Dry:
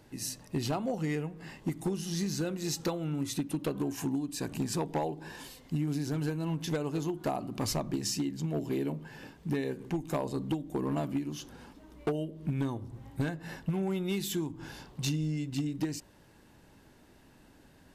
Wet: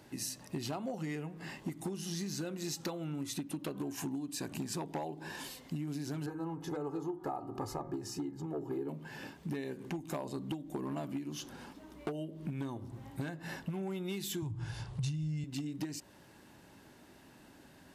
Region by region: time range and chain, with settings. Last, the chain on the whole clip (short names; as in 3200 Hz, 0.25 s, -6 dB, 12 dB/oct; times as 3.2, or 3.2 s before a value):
6.26–8.89 resonant high shelf 1700 Hz -11.5 dB, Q 1.5 + comb 2.4 ms, depth 63% + de-hum 78.07 Hz, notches 28
14.42–15.44 resonant low shelf 160 Hz +12.5 dB, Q 3 + careless resampling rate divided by 2×, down none, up filtered
whole clip: HPF 140 Hz 6 dB/oct; notch 470 Hz, Q 12; compressor 3:1, threshold -40 dBFS; gain +2.5 dB